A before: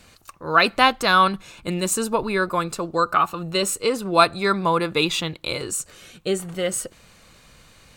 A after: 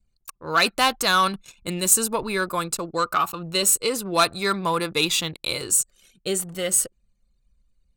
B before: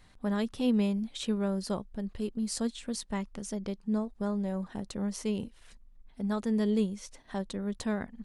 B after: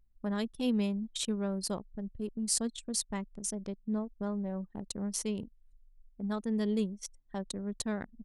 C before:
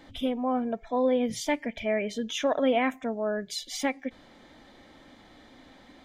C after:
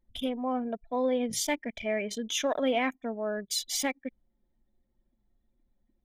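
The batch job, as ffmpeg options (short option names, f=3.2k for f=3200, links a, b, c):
-af "acontrast=60,crystalizer=i=2.5:c=0,anlmdn=63.1,volume=-9.5dB"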